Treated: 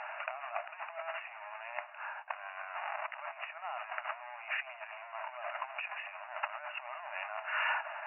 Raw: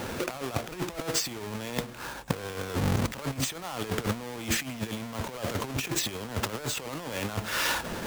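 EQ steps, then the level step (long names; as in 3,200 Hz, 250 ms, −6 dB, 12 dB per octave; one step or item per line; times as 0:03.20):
linear-phase brick-wall band-pass 590–2,900 Hz
high-frequency loss of the air 94 metres
−1.5 dB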